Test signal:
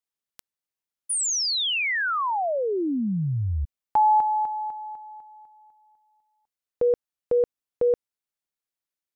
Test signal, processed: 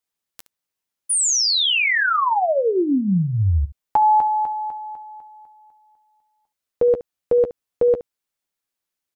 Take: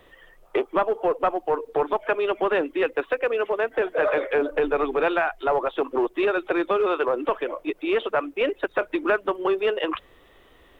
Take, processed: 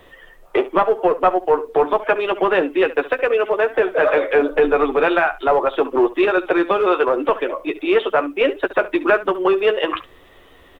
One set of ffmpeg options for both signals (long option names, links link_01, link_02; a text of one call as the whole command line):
ffmpeg -i in.wav -af "aecho=1:1:11|70:0.422|0.158,volume=5.5dB" out.wav